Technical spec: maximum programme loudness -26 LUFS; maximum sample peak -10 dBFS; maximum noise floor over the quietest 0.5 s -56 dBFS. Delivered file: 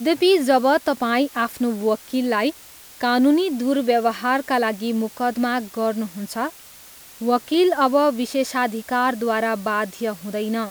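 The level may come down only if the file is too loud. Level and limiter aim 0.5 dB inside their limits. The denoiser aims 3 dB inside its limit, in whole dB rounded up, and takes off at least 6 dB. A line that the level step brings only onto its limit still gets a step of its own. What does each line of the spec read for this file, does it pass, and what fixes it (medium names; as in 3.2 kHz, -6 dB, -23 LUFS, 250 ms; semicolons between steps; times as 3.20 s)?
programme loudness -21.0 LUFS: fail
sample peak -5.5 dBFS: fail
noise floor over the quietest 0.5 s -44 dBFS: fail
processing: noise reduction 10 dB, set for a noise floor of -44 dBFS; trim -5.5 dB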